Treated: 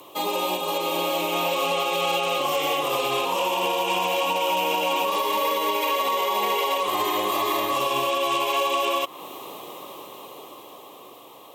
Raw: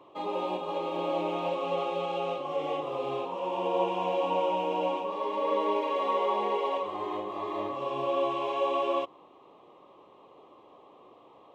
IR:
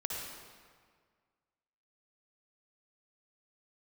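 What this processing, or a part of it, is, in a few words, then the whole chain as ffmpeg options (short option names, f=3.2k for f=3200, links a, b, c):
FM broadcast chain: -filter_complex "[0:a]highpass=75,dynaudnorm=f=430:g=9:m=9.5dB,acrossover=split=1200|2500[a][b][c];[a]acompressor=threshold=-32dB:ratio=4[d];[b]acompressor=threshold=-34dB:ratio=4[e];[c]acompressor=threshold=-51dB:ratio=4[f];[d][e][f]amix=inputs=3:normalize=0,aemphasis=mode=production:type=75fm,alimiter=limit=-23.5dB:level=0:latency=1:release=83,asoftclip=type=hard:threshold=-25.5dB,lowpass=f=15k:w=0.5412,lowpass=f=15k:w=1.3066,aemphasis=mode=production:type=75fm,volume=8.5dB"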